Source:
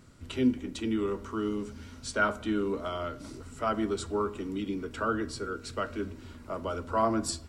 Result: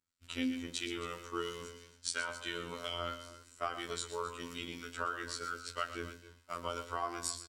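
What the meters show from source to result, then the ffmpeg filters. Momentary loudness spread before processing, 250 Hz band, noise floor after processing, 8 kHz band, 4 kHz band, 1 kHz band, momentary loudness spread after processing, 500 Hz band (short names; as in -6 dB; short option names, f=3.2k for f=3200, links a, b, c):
11 LU, -12.0 dB, -64 dBFS, -0.5 dB, +1.5 dB, -6.5 dB, 8 LU, -10.5 dB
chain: -filter_complex "[0:a]agate=range=-33dB:threshold=-35dB:ratio=3:detection=peak,tiltshelf=f=1.1k:g=-9,acompressor=threshold=-32dB:ratio=6,acrossover=split=1600[a][b];[a]aeval=exprs='val(0)*(1-0.5/2+0.5/2*cos(2*PI*3*n/s))':c=same[c];[b]aeval=exprs='val(0)*(1-0.5/2-0.5/2*cos(2*PI*3*n/s))':c=same[d];[c][d]amix=inputs=2:normalize=0,flanger=delay=9.3:depth=3.3:regen=62:speed=0.74:shape=sinusoidal,afftfilt=real='hypot(re,im)*cos(PI*b)':imag='0':win_size=2048:overlap=0.75,aecho=1:1:120|269:0.251|0.158,volume=8.5dB"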